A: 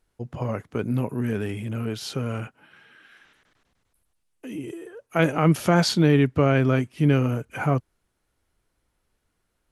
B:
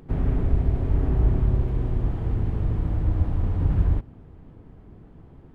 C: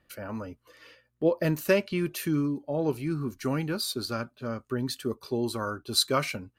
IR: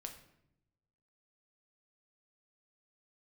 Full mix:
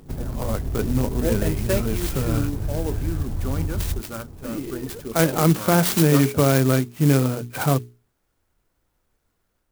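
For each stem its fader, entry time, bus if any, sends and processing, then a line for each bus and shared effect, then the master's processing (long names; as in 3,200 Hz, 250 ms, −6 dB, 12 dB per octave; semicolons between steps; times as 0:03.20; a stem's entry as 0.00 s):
−1.0 dB, 0.00 s, no send, no processing
+1.0 dB, 0.00 s, no send, downward compressor 6 to 1, threshold −27 dBFS, peak gain reduction 13 dB
−5.0 dB, 0.00 s, no send, no processing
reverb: not used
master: mains-hum notches 60/120/180/240/300/360/420 Hz; automatic gain control gain up to 4 dB; converter with an unsteady clock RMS 0.075 ms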